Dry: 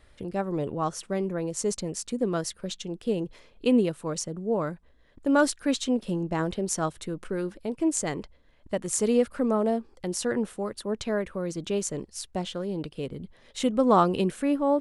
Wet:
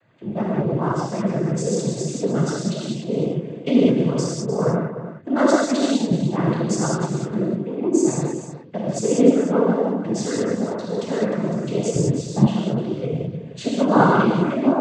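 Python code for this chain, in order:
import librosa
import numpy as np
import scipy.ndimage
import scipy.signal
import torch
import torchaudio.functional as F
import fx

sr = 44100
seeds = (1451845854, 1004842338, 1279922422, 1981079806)

y = fx.wiener(x, sr, points=9)
y = fx.low_shelf(y, sr, hz=160.0, db=9.0)
y = fx.env_phaser(y, sr, low_hz=370.0, high_hz=4400.0, full_db=-21.0, at=(7.34, 8.97))
y = fx.rev_gated(y, sr, seeds[0], gate_ms=230, shape='flat', drr_db=-5.5)
y = fx.noise_vocoder(y, sr, seeds[1], bands=16)
y = fx.low_shelf(y, sr, hz=340.0, db=12.0, at=(11.96, 12.47))
y = y + 10.0 ** (-11.5 / 20.0) * np.pad(y, (int(304 * sr / 1000.0), 0))[:len(y)]
y = F.gain(torch.from_numpy(y), -1.0).numpy()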